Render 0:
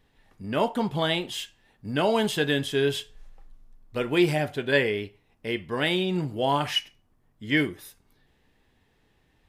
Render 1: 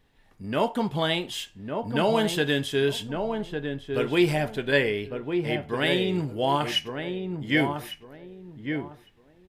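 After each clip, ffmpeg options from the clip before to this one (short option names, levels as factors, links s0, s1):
-filter_complex "[0:a]asplit=2[s0][s1];[s1]adelay=1154,lowpass=f=1200:p=1,volume=0.562,asplit=2[s2][s3];[s3]adelay=1154,lowpass=f=1200:p=1,volume=0.25,asplit=2[s4][s5];[s5]adelay=1154,lowpass=f=1200:p=1,volume=0.25[s6];[s0][s2][s4][s6]amix=inputs=4:normalize=0"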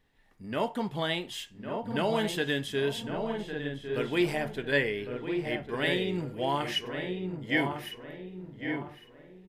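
-filter_complex "[0:a]equalizer=f=1900:t=o:w=0.27:g=4.5,bandreject=f=50:t=h:w=6,bandreject=f=100:t=h:w=6,bandreject=f=150:t=h:w=6,asplit=2[s0][s1];[s1]adelay=1105,lowpass=f=2200:p=1,volume=0.355,asplit=2[s2][s3];[s3]adelay=1105,lowpass=f=2200:p=1,volume=0.33,asplit=2[s4][s5];[s5]adelay=1105,lowpass=f=2200:p=1,volume=0.33,asplit=2[s6][s7];[s7]adelay=1105,lowpass=f=2200:p=1,volume=0.33[s8];[s0][s2][s4][s6][s8]amix=inputs=5:normalize=0,volume=0.531"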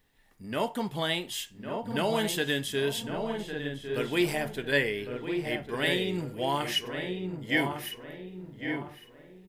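-af "crystalizer=i=1.5:c=0"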